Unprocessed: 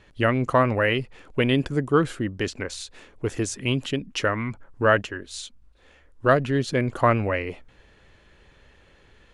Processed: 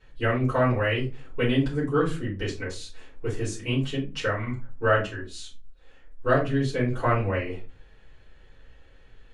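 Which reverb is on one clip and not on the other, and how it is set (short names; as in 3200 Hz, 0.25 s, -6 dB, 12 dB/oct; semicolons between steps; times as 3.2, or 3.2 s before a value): shoebox room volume 120 m³, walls furnished, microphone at 4.7 m; gain -14.5 dB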